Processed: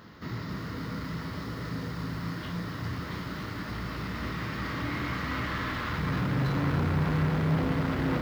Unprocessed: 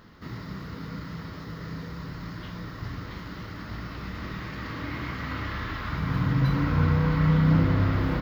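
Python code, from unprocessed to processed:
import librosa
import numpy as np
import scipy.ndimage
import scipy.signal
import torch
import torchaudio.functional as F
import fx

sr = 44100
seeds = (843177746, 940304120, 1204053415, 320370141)

y = fx.doubler(x, sr, ms=34.0, db=-11.5)
y = 10.0 ** (-27.0 / 20.0) * np.tanh(y / 10.0 ** (-27.0 / 20.0))
y = scipy.signal.sosfilt(scipy.signal.butter(2, 62.0, 'highpass', fs=sr, output='sos'), y)
y = fx.hum_notches(y, sr, base_hz=50, count=2)
y = fx.echo_crushed(y, sr, ms=280, feedback_pct=80, bits=9, wet_db=-9.5)
y = F.gain(torch.from_numpy(y), 2.5).numpy()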